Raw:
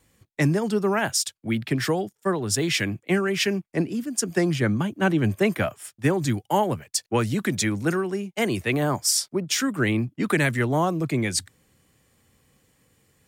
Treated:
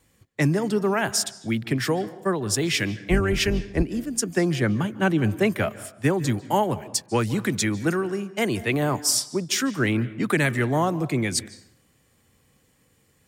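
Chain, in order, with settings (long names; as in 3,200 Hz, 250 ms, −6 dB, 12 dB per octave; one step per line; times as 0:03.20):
0:03.00–0:03.83: sub-octave generator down 2 octaves, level +1 dB
convolution reverb RT60 0.70 s, pre-delay 136 ms, DRR 16.5 dB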